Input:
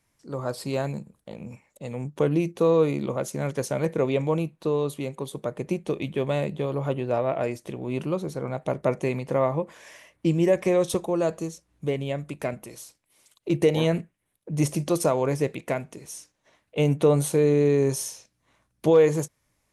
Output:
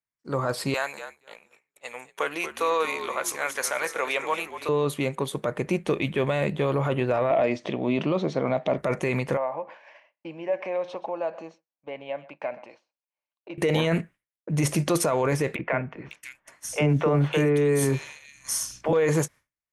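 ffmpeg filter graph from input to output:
-filter_complex "[0:a]asettb=1/sr,asplit=3[a][b][c];[a]atrim=end=0.744[d];[b]atrim=start=0.74:end=4.69,asetpts=PTS-STARTPTS,afade=t=in:d=0.004:c=qsin,afade=t=out:st=3.946:d=0.004:c=qsin,highpass=880,highshelf=f=9.3k:g=9,asplit=5[e][f][g][h][i];[f]adelay=234,afreqshift=-64,volume=-11dB[j];[g]adelay=468,afreqshift=-128,volume=-19.6dB[k];[h]adelay=702,afreqshift=-192,volume=-28.3dB[l];[i]adelay=936,afreqshift=-256,volume=-36.9dB[m];[e][j][k][l][m]amix=inputs=5:normalize=0,atrim=end_sample=174195[n];[c]atrim=start=4.686[o];[d][n]acrossfade=d=0.004:c1=hsin:c2=qsin[p];[p][o]acrossfade=d=0.004:c1=qsin:c2=hsin,asettb=1/sr,asplit=3[q][r][s];[q]atrim=end=7.304[t];[r]atrim=start=7.3:end=8.78,asetpts=PTS-STARTPTS,afade=t=in:d=0.004:c=qsin,afade=t=out:st=1.476:d=0.004:c=qsin,acompressor=mode=upward:threshold=-35dB:ratio=2.5:attack=3.2:release=140:knee=2.83:detection=peak,highpass=130,equalizer=f=250:t=q:w=4:g=5,equalizer=f=640:t=q:w=4:g=7,equalizer=f=1.5k:t=q:w=4:g=-7,equalizer=f=3.4k:t=q:w=4:g=5,lowpass=f=5.5k:w=0.5412,lowpass=f=5.5k:w=1.3066[u];[s]atrim=start=8.776[v];[t][u]acrossfade=d=0.004:c1=hsin:c2=qsin[w];[w][v]acrossfade=d=0.004:c1=qsin:c2=hsin,asettb=1/sr,asplit=3[x][y][z];[x]atrim=end=9.374[aa];[y]atrim=start=9.37:end=13.58,asetpts=PTS-STARTPTS,afade=t=in:d=0.004:c=qsin,afade=t=out:st=4.206:d=0.004:c=qsin,acompressor=threshold=-39dB:ratio=2:attack=3.2:release=140:knee=1:detection=peak,highpass=390,equalizer=f=400:t=q:w=4:g=-9,equalizer=f=580:t=q:w=4:g=5,equalizer=f=840:t=q:w=4:g=6,equalizer=f=1.3k:t=q:w=4:g=-7,equalizer=f=1.9k:t=q:w=4:g=-8,equalizer=f=3.5k:t=q:w=4:g=-10,lowpass=f=3.8k:w=0.5412,lowpass=f=3.8k:w=1.3066,aecho=1:1:127:0.141,atrim=end_sample=185661[ab];[z]atrim=start=13.576[ac];[aa][ab]acrossfade=d=0.004:c1=hsin:c2=qsin[ad];[ad][ac]acrossfade=d=0.004:c1=qsin:c2=hsin,asettb=1/sr,asplit=3[ae][af][ag];[ae]atrim=end=15.564[ah];[af]atrim=start=15.56:end=18.93,asetpts=PTS-STARTPTS,afade=t=in:d=0.004:c=qsin,afade=t=out:st=3.366:d=0.004:c=qsin,bandreject=f=3.9k:w=12,acompressor=mode=upward:threshold=-41dB:ratio=2.5:attack=3.2:release=140:knee=2.83:detection=peak,acrossover=split=460|2800[ai][aj][ak];[ai]adelay=30[al];[ak]adelay=550[am];[al][aj][am]amix=inputs=3:normalize=0,atrim=end_sample=148617[an];[ag]atrim=start=18.926[ao];[ah][an]acrossfade=d=0.004:c1=hsin:c2=qsin[ap];[ap][ao]acrossfade=d=0.004:c1=qsin:c2=hsin,agate=range=-33dB:threshold=-43dB:ratio=3:detection=peak,equalizer=f=1.7k:w=0.83:g=9,alimiter=limit=-18dB:level=0:latency=1:release=10,volume=3.5dB"

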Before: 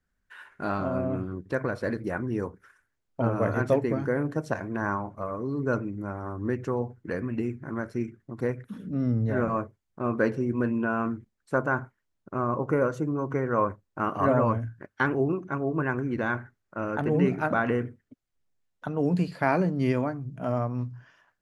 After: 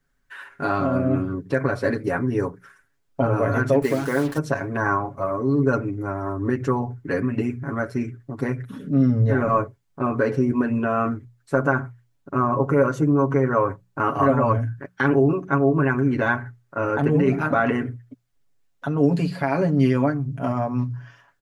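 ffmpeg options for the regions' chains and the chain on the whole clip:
-filter_complex "[0:a]asettb=1/sr,asplit=3[a][b][c];[a]atrim=end=3.824[d];[b]atrim=start=3.82:end=4.38,asetpts=PTS-STARTPTS,afade=t=in:d=0.004:c=qsin,afade=t=out:st=0.556:d=0.004:c=qsin,aemphasis=mode=production:type=bsi,acrusher=bits=6:mix=0:aa=0.5[e];[c]atrim=start=4.376[f];[d][e]acrossfade=d=0.004:c1=hsin:c2=qsin[g];[g][f]acrossfade=d=0.004:c1=qsin:c2=hsin,alimiter=limit=-18dB:level=0:latency=1:release=66,bandreject=f=60:t=h:w=6,bandreject=f=120:t=h:w=6,bandreject=f=180:t=h:w=6,aecho=1:1:7.2:0.83,volume=5.5dB"

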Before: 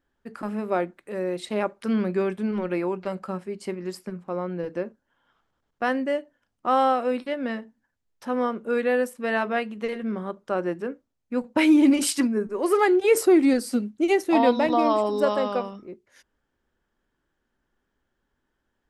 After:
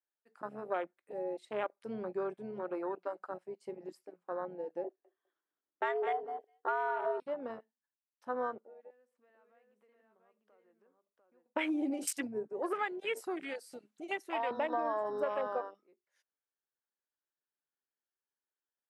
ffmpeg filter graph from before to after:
-filter_complex "[0:a]asettb=1/sr,asplit=3[a][b][c];[a]atrim=end=4.844[d];[b]atrim=start=4.84:end=7.2,asetpts=PTS-STARTPTS,afade=t=in:d=0.004:c=qsin,afade=t=out:st=2.356:d=0.004:c=qsin,equalizer=f=150:w=0.99:g=14.5,afreqshift=160,aecho=1:1:203|406:0.299|0.0537,atrim=end_sample=104076[e];[c]atrim=start=7.196[f];[d][e]acrossfade=d=0.004:c1=hsin:c2=qsin[g];[g][f]acrossfade=d=0.004:c1=qsin:c2=hsin,asettb=1/sr,asplit=3[h][i][j];[h]atrim=end=8.594[k];[i]atrim=start=8.59:end=11.46,asetpts=PTS-STARTPTS,afade=t=in:d=0.004:c=qsin,afade=t=out:st=2.866:d=0.004:c=qsin,acompressor=threshold=-40dB:ratio=5:attack=3.2:release=140:knee=1:detection=peak,lowpass=f=1.1k:p=1,aecho=1:1:696:0.631,atrim=end_sample=126567[l];[j]atrim=start=11.456[m];[k][l]acrossfade=d=0.004:c1=hsin:c2=qsin[n];[n][m]acrossfade=d=0.004:c1=qsin:c2=hsin,asettb=1/sr,asplit=3[o][p][q];[o]atrim=end=12.734[r];[p]atrim=start=12.73:end=14.51,asetpts=PTS-STARTPTS,afade=t=in:d=0.004:c=qsin,afade=t=out:st=1.776:d=0.004:c=qsin,highpass=f=1.1k:p=1,acompressor=mode=upward:threshold=-27dB:ratio=2.5:attack=3.2:release=140:knee=2.83:detection=peak[s];[q]atrim=start=14.506[t];[r][s]acrossfade=d=0.004:c1=hsin:c2=qsin[u];[u][t]acrossfade=d=0.004:c1=qsin:c2=hsin,highpass=480,afwtdn=0.0251,acompressor=threshold=-24dB:ratio=6,volume=-5.5dB"

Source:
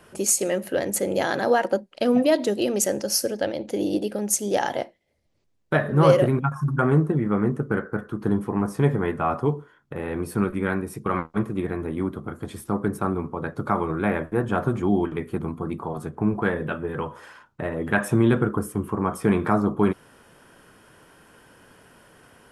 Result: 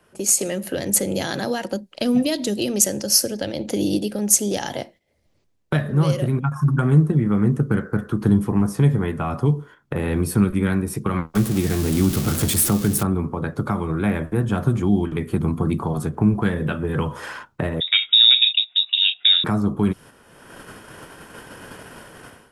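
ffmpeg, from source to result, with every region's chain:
-filter_complex "[0:a]asettb=1/sr,asplit=3[a][b][c];[a]atrim=end=11.354[d];[b]atrim=start=11.35:end=13.03,asetpts=PTS-STARTPTS,afade=t=in:d=0.004:c=qsin,afade=t=out:st=1.676:d=0.004:c=qsin,aeval=exprs='val(0)+0.5*0.0224*sgn(val(0))':c=same,aemphasis=mode=production:type=cd,bandreject=f=1k:w=16[e];[c]atrim=start=13.026[f];[d][e]acrossfade=d=0.004:c1=hsin:c2=qsin[g];[g][f]acrossfade=d=0.004:c1=qsin:c2=hsin,asettb=1/sr,asplit=3[h][i][j];[h]atrim=end=17.804[k];[i]atrim=start=17.8:end=19.44,asetpts=PTS-STARTPTS,afade=t=in:d=0.004:c=qsin,afade=t=out:st=1.636:d=0.004:c=qsin,agate=range=-15dB:threshold=-30dB:ratio=16:release=100:detection=peak,lowpass=f=3.3k:t=q:w=0.5098,lowpass=f=3.3k:t=q:w=0.6013,lowpass=f=3.3k:t=q:w=0.9,lowpass=f=3.3k:t=q:w=2.563,afreqshift=-3900[l];[j]atrim=start=19.436[m];[k][l]acrossfade=d=0.004:c1=hsin:c2=qsin[n];[n][m]acrossfade=d=0.004:c1=qsin:c2=hsin,dynaudnorm=f=230:g=3:m=15dB,agate=range=-7dB:threshold=-37dB:ratio=16:detection=peak,acrossover=split=220|3000[o][p][q];[p]acompressor=threshold=-26dB:ratio=6[r];[o][r][q]amix=inputs=3:normalize=0"

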